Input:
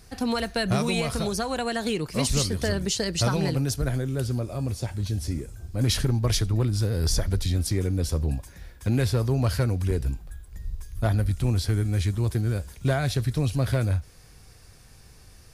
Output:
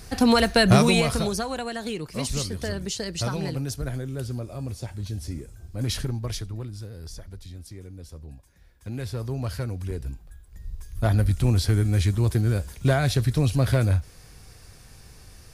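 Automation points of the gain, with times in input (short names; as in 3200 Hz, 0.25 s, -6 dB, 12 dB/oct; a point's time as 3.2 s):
0.77 s +8 dB
1.7 s -4 dB
6 s -4 dB
7.12 s -16 dB
8.38 s -16 dB
9.28 s -6 dB
10.43 s -6 dB
11.19 s +3 dB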